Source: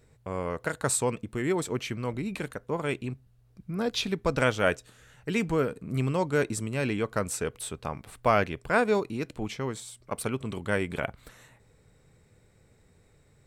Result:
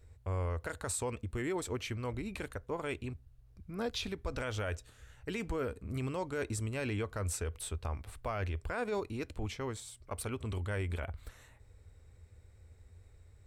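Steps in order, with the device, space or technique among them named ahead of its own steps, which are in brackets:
car stereo with a boomy subwoofer (low shelf with overshoot 110 Hz +9.5 dB, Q 3; brickwall limiter −21.5 dBFS, peak gain reduction 11 dB)
level −5 dB

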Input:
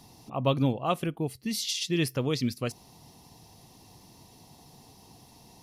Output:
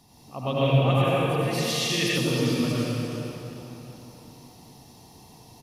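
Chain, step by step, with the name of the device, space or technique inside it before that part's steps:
cave (single-tap delay 349 ms −11.5 dB; convolution reverb RT60 3.3 s, pre-delay 73 ms, DRR −7.5 dB)
0:00.61–0:02.18: octave-band graphic EQ 125/250/500/1,000/2,000 Hz +3/−7/+6/−4/+10 dB
level −4.5 dB

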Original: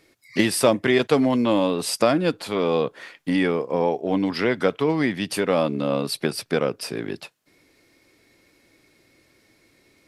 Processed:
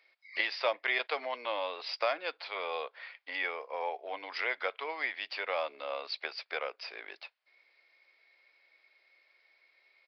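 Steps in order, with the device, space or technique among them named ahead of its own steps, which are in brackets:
musical greeting card (downsampling to 11,025 Hz; high-pass filter 610 Hz 24 dB per octave; parametric band 2,200 Hz +7 dB 0.36 octaves)
level −8.5 dB

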